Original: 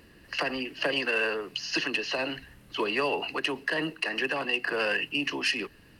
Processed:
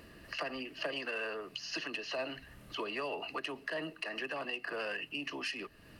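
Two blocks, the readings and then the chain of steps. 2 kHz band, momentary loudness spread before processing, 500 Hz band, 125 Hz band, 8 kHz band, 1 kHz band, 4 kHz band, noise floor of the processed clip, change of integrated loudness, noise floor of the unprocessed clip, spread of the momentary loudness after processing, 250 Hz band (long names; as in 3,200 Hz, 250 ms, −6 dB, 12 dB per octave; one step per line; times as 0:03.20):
−10.5 dB, 6 LU, −8.5 dB, −9.0 dB, −9.0 dB, −8.5 dB, −10.0 dB, −58 dBFS, −10.0 dB, −56 dBFS, 4 LU, −10.0 dB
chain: downward compressor 2 to 1, threshold −45 dBFS, peak gain reduction 12.5 dB
hollow resonant body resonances 640/1,200 Hz, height 9 dB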